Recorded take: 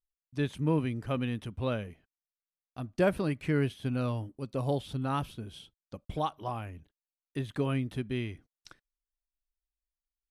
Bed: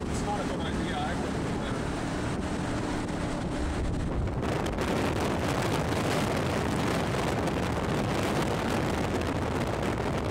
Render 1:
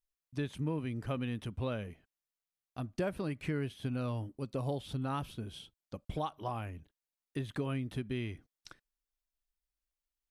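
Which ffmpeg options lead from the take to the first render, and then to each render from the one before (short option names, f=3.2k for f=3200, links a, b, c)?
-af "acompressor=threshold=-33dB:ratio=3"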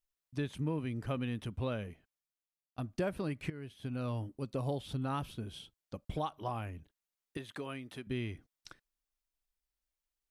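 -filter_complex "[0:a]asettb=1/sr,asplit=3[a][b][c];[a]atrim=end=7.374[d];[b]atrim=start=7.37:end=8.07,asetpts=PTS-STARTPTS,afade=t=in:d=0.004:c=qsin,afade=t=out:st=0.696:d=0.004:c=qsin,highpass=f=560:p=1[e];[c]atrim=start=8.066[f];[d][e]acrossfade=d=0.004:c1=hsin:c2=qsin[g];[g][f]acrossfade=d=0.004:c1=qsin:c2=hsin,asplit=3[h][i][j];[h]atrim=end=2.78,asetpts=PTS-STARTPTS,afade=t=out:st=1.84:d=0.94:silence=0.158489[k];[i]atrim=start=2.78:end=3.5,asetpts=PTS-STARTPTS,afade=t=in:d=0.004:c=hsin:silence=0.158489,afade=t=out:st=0.716:d=0.004:c=hsin:silence=0.177828[l];[j]atrim=start=3.5,asetpts=PTS-STARTPTS,afade=t=in:d=0.64:silence=0.177828[m];[k][l][m]concat=n=3:v=0:a=1"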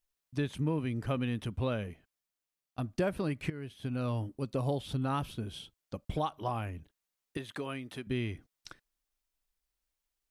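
-af "volume=3.5dB"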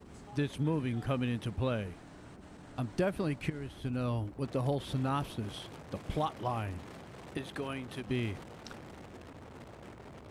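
-filter_complex "[1:a]volume=-20.5dB[a];[0:a][a]amix=inputs=2:normalize=0"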